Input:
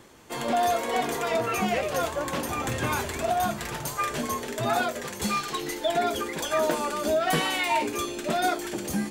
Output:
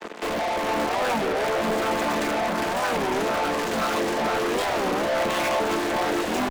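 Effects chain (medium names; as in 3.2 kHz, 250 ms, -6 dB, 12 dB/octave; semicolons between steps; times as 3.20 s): vocoder on a held chord minor triad, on D3; treble shelf 5.8 kHz -4.5 dB; tempo 1.4×; in parallel at -11.5 dB: fuzz box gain 48 dB, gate -51 dBFS; on the sum: Bessel high-pass 370 Hz, order 8; saturation -31.5 dBFS, distortion -6 dB; on a send: echo whose repeats swap between lows and highs 459 ms, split 1.8 kHz, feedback 57%, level -2.5 dB; on the sum: warped record 33 1/3 rpm, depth 250 cents; trim +7 dB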